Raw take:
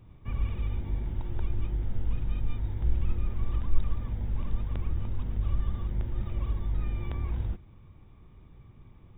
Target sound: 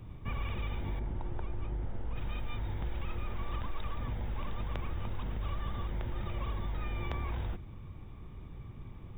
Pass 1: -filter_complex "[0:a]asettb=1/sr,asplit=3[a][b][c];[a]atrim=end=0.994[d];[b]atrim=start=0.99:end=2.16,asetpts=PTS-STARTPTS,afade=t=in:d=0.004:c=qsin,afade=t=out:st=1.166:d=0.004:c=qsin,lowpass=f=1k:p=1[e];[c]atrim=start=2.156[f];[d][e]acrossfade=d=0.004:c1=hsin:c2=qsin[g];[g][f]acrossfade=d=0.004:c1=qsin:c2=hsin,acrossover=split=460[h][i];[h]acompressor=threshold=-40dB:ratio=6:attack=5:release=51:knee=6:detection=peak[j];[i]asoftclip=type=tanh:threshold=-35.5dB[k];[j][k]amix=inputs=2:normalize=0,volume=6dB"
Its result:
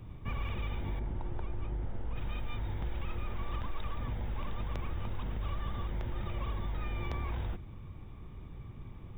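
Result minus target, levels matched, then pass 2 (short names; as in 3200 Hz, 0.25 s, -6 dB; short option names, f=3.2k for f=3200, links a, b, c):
soft clip: distortion +11 dB
-filter_complex "[0:a]asettb=1/sr,asplit=3[a][b][c];[a]atrim=end=0.994[d];[b]atrim=start=0.99:end=2.16,asetpts=PTS-STARTPTS,afade=t=in:d=0.004:c=qsin,afade=t=out:st=1.166:d=0.004:c=qsin,lowpass=f=1k:p=1[e];[c]atrim=start=2.156[f];[d][e]acrossfade=d=0.004:c1=hsin:c2=qsin[g];[g][f]acrossfade=d=0.004:c1=qsin:c2=hsin,acrossover=split=460[h][i];[h]acompressor=threshold=-40dB:ratio=6:attack=5:release=51:knee=6:detection=peak[j];[i]asoftclip=type=tanh:threshold=-26.5dB[k];[j][k]amix=inputs=2:normalize=0,volume=6dB"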